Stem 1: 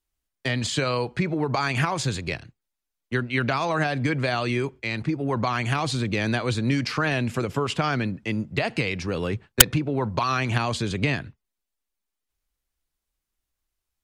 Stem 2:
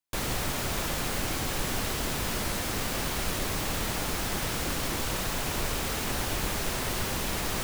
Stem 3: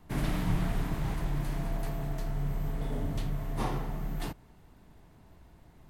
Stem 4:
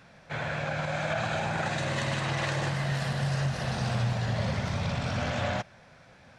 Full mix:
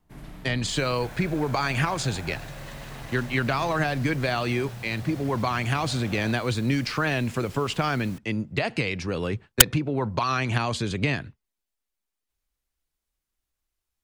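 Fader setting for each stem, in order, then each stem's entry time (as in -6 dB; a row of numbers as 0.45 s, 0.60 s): -1.0 dB, -18.0 dB, -12.0 dB, -11.5 dB; 0.00 s, 0.55 s, 0.00 s, 0.70 s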